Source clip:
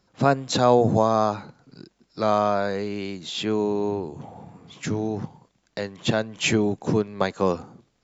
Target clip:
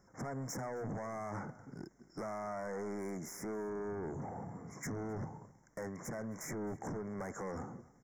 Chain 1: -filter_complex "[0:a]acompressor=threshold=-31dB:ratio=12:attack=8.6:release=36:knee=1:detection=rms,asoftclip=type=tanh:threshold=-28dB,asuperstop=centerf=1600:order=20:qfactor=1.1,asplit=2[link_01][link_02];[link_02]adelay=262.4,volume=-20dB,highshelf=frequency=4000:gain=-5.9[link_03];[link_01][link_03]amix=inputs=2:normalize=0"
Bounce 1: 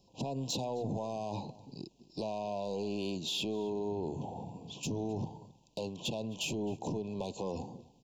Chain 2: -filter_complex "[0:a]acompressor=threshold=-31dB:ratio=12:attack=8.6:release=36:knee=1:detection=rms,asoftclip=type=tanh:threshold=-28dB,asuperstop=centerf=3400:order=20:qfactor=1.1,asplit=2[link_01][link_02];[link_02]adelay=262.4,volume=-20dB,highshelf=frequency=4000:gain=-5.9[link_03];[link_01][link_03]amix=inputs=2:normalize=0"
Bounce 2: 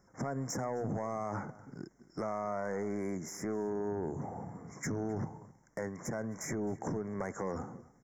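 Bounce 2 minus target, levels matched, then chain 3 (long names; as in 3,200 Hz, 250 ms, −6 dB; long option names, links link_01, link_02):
soft clipping: distortion −8 dB
-filter_complex "[0:a]acompressor=threshold=-31dB:ratio=12:attack=8.6:release=36:knee=1:detection=rms,asoftclip=type=tanh:threshold=-37dB,asuperstop=centerf=3400:order=20:qfactor=1.1,asplit=2[link_01][link_02];[link_02]adelay=262.4,volume=-20dB,highshelf=frequency=4000:gain=-5.9[link_03];[link_01][link_03]amix=inputs=2:normalize=0"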